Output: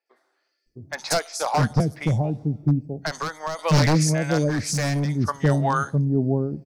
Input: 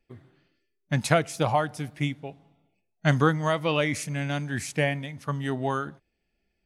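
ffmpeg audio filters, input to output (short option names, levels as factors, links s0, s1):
-filter_complex "[0:a]acrossover=split=520|4200[s0][s1][s2];[s2]adelay=60[s3];[s0]adelay=660[s4];[s4][s1][s3]amix=inputs=3:normalize=0,aeval=exprs='0.106*(abs(mod(val(0)/0.106+3,4)-2)-1)':c=same,asettb=1/sr,asplit=3[s5][s6][s7];[s5]atrim=end=1.804[s8];[s6]atrim=start=1.8:end=3.59,asetpts=PTS-STARTPTS,afade=t=in:d=0.004:c=qsin,afade=t=out:st=1.786:d=0.004:c=qsin,acrossover=split=220[s9][s10];[s10]acompressor=threshold=0.0224:ratio=10[s11];[s9][s11]amix=inputs=2:normalize=0[s12];[s7]atrim=start=3.586[s13];[s8][s12]acrossfade=d=0.004:c1=hsin:c2=qsin[s14];[s14][s13]acrossfade=d=0.004:c1=qsin:c2=hsin,asettb=1/sr,asplit=3[s15][s16][s17];[s15]atrim=end=4.494[s18];[s16]atrim=start=4.49:end=5.09,asetpts=PTS-STARTPTS,afade=t=in:d=0.004:c=qsin,afade=t=out:st=0.596:d=0.004:c=qsin,asoftclip=type=hard:threshold=0.0376[s19];[s17]atrim=start=5.086[s20];[s18][s19]acrossfade=d=0.004:c1=hsin:c2=qsin[s21];[s21][s20]acrossfade=d=0.004:c1=qsin:c2=hsin,highshelf=f=3900:t=q:w=3:g=9.5,dynaudnorm=f=130:g=9:m=2.82,bass=f=250:g=1,treble=f=4000:g=-12"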